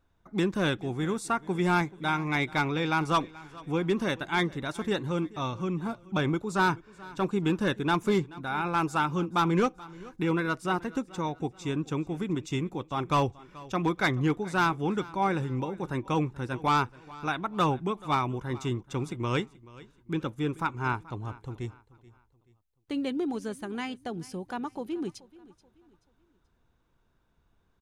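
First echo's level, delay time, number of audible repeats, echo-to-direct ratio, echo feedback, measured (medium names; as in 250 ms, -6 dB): -20.5 dB, 431 ms, 2, -20.0 dB, 37%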